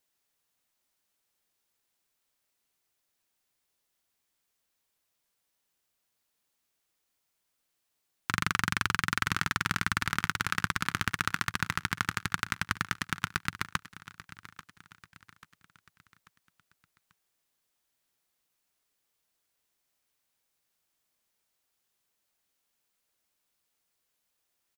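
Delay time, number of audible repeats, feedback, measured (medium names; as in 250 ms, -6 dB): 839 ms, 3, 45%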